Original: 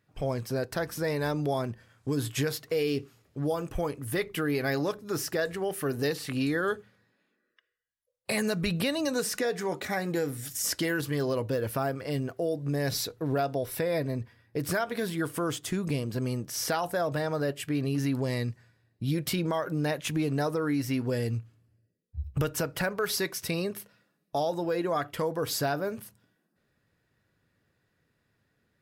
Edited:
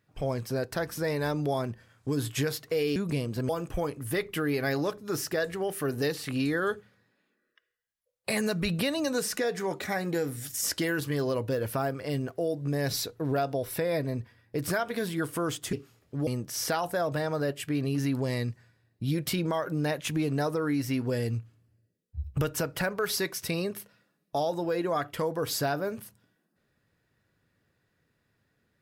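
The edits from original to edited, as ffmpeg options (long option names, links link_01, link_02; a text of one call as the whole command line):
ffmpeg -i in.wav -filter_complex "[0:a]asplit=5[link_01][link_02][link_03][link_04][link_05];[link_01]atrim=end=2.962[link_06];[link_02]atrim=start=15.738:end=16.272[link_07];[link_03]atrim=start=3.498:end=15.742[link_08];[link_04]atrim=start=2.958:end=3.502[link_09];[link_05]atrim=start=16.268[link_10];[link_06][link_07]acrossfade=duration=0.004:curve1=hsin:curve2=hsin[link_11];[link_11][link_08]acrossfade=duration=0.004:curve1=hsin:curve2=hsin[link_12];[link_12][link_09]acrossfade=duration=0.004:curve1=hsin:curve2=hsin[link_13];[link_13][link_10]acrossfade=duration=0.004:curve1=hsin:curve2=hsin" out.wav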